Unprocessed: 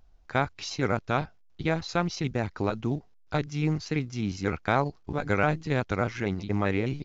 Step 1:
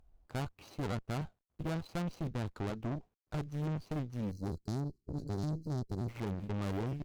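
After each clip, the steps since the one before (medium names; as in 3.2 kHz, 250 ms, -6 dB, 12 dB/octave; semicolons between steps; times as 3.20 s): median filter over 25 samples; time-frequency box 4.31–6.09 s, 420–4000 Hz -26 dB; valve stage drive 32 dB, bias 0.75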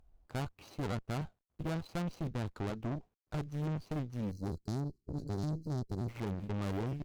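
no audible change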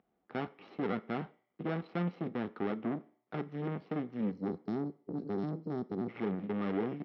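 cabinet simulation 190–3500 Hz, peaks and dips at 190 Hz +3 dB, 590 Hz -5 dB, 990 Hz -9 dB, 1.5 kHz -5 dB, 2.5 kHz -3 dB; reverberation RT60 0.45 s, pre-delay 3 ms, DRR 14 dB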